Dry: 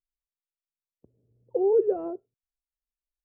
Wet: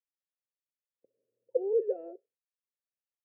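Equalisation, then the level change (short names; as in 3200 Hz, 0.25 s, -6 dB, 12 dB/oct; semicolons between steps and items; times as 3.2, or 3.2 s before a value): vowel filter e; HPF 150 Hz; +2.5 dB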